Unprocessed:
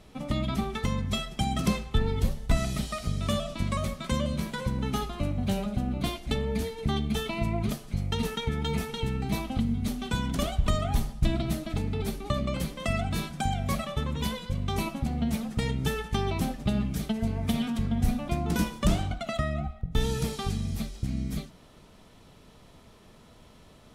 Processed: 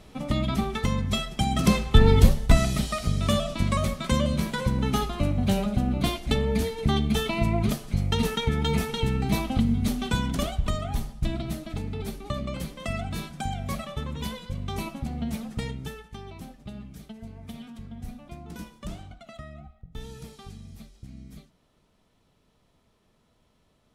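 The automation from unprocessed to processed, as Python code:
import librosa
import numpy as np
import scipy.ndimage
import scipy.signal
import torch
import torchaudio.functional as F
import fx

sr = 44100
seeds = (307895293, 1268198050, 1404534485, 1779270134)

y = fx.gain(x, sr, db=fx.line((1.5, 3.0), (2.13, 11.5), (2.71, 4.5), (10.03, 4.5), (10.78, -2.5), (15.6, -2.5), (16.09, -13.0)))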